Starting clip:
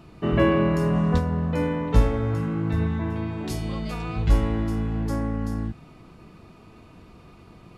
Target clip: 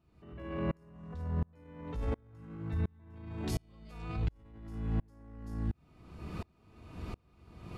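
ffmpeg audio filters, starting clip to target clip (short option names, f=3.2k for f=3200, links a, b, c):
-af "equalizer=f=72:t=o:w=0.77:g=10.5,dynaudnorm=f=340:g=11:m=11.5dB,alimiter=level_in=7dB:limit=-24dB:level=0:latency=1:release=110,volume=-7dB,aeval=exprs='val(0)*pow(10,-35*if(lt(mod(-1.4*n/s,1),2*abs(-1.4)/1000),1-mod(-1.4*n/s,1)/(2*abs(-1.4)/1000),(mod(-1.4*n/s,1)-2*abs(-1.4)/1000)/(1-2*abs(-1.4)/1000))/20)':c=same,volume=8dB"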